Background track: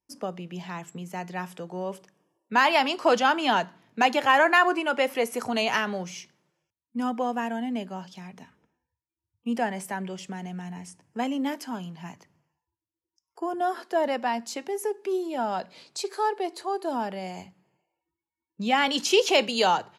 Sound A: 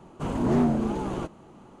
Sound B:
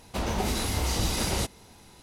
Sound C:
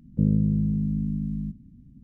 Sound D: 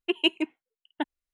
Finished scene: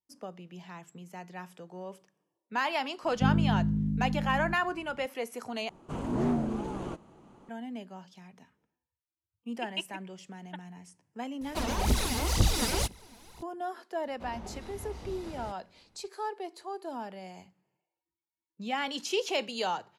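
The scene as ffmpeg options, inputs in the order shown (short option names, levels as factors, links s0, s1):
-filter_complex "[2:a]asplit=2[s0][s1];[0:a]volume=0.335[s2];[4:a]highpass=610[s3];[s0]aphaser=in_gain=1:out_gain=1:delay=4.6:decay=0.71:speed=2:type=triangular[s4];[s1]lowpass=f=1500:p=1[s5];[s2]asplit=2[s6][s7];[s6]atrim=end=5.694[s8];[1:a]atrim=end=1.8,asetpts=PTS-STARTPTS,volume=0.501[s9];[s7]atrim=start=7.486[s10];[3:a]atrim=end=2.03,asetpts=PTS-STARTPTS,volume=0.631,afade=t=in:d=0.004:c=hsin,afade=t=out:st=2.026:d=0.004:c=hsin,adelay=3030[s11];[s3]atrim=end=1.33,asetpts=PTS-STARTPTS,volume=0.299,afade=t=in:d=0.004:c=hsin,afade=t=out:st=1.326:d=0.004:c=hsin,adelay=9530[s12];[s4]atrim=end=2.02,asetpts=PTS-STARTPTS,volume=0.631,afade=t=in:d=0.004:c=hsin,afade=t=out:st=2.016:d=0.004:c=hsin,adelay=11410[s13];[s5]atrim=end=2.02,asetpts=PTS-STARTPTS,volume=0.188,afade=t=in:d=0.004:c=hsin,afade=t=out:st=2.016:d=0.004:c=hsin,adelay=14060[s14];[s8][s9]acrossfade=d=0.004:c1=hsin:c2=hsin[s15];[s15][s10]acrossfade=d=0.004:c1=hsin:c2=hsin[s16];[s16][s11][s12][s13][s14]amix=inputs=5:normalize=0"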